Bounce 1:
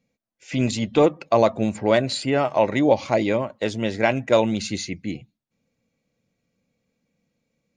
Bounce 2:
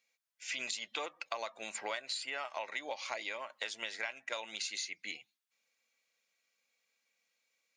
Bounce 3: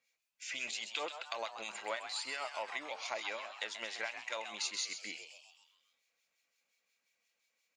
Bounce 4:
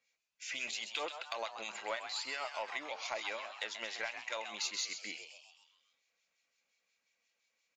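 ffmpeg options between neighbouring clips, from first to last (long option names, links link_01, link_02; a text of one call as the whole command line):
ffmpeg -i in.wav -af "highpass=1400,acompressor=threshold=-38dB:ratio=10,volume=2.5dB" out.wav
ffmpeg -i in.wav -filter_complex "[0:a]acrossover=split=1800[link_01][link_02];[link_01]aeval=exprs='val(0)*(1-0.7/2+0.7/2*cos(2*PI*5.7*n/s))':channel_layout=same[link_03];[link_02]aeval=exprs='val(0)*(1-0.7/2-0.7/2*cos(2*PI*5.7*n/s))':channel_layout=same[link_04];[link_03][link_04]amix=inputs=2:normalize=0,asplit=7[link_05][link_06][link_07][link_08][link_09][link_10][link_11];[link_06]adelay=131,afreqshift=150,volume=-9dB[link_12];[link_07]adelay=262,afreqshift=300,volume=-14.2dB[link_13];[link_08]adelay=393,afreqshift=450,volume=-19.4dB[link_14];[link_09]adelay=524,afreqshift=600,volume=-24.6dB[link_15];[link_10]adelay=655,afreqshift=750,volume=-29.8dB[link_16];[link_11]adelay=786,afreqshift=900,volume=-35dB[link_17];[link_05][link_12][link_13][link_14][link_15][link_16][link_17]amix=inputs=7:normalize=0,volume=2.5dB" out.wav
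ffmpeg -i in.wav -af "aresample=16000,aresample=44100,aeval=exprs='0.112*(cos(1*acos(clip(val(0)/0.112,-1,1)))-cos(1*PI/2))+0.00562*(cos(5*acos(clip(val(0)/0.112,-1,1)))-cos(5*PI/2))+0.000891*(cos(6*acos(clip(val(0)/0.112,-1,1)))-cos(6*PI/2))+0.000891*(cos(7*acos(clip(val(0)/0.112,-1,1)))-cos(7*PI/2))':channel_layout=same,volume=-1dB" out.wav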